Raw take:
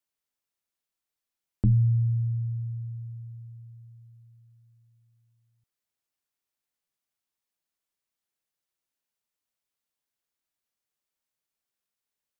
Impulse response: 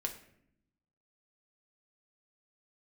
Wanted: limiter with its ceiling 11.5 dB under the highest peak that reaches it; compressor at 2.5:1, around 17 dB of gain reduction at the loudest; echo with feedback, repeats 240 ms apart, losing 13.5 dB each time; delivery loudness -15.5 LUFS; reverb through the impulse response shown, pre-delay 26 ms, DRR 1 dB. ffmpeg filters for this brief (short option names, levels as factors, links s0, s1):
-filter_complex "[0:a]acompressor=threshold=0.00562:ratio=2.5,alimiter=level_in=4.73:limit=0.0631:level=0:latency=1,volume=0.211,aecho=1:1:240|480:0.211|0.0444,asplit=2[s0][s1];[1:a]atrim=start_sample=2205,adelay=26[s2];[s1][s2]afir=irnorm=-1:irlink=0,volume=0.794[s3];[s0][s3]amix=inputs=2:normalize=0,volume=15.8"